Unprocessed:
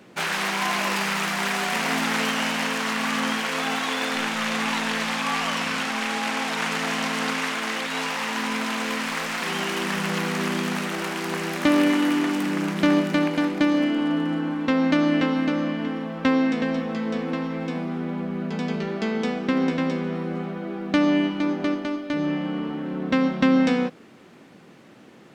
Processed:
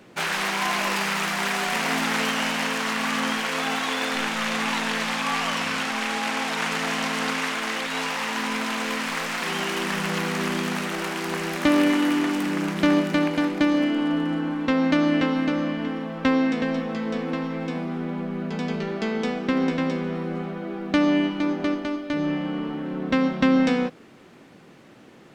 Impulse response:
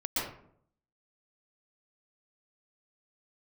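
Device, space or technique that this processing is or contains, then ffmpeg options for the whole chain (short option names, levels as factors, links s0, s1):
low shelf boost with a cut just above: -af "lowshelf=f=69:g=7.5,equalizer=f=200:t=o:w=0.64:g=-2.5"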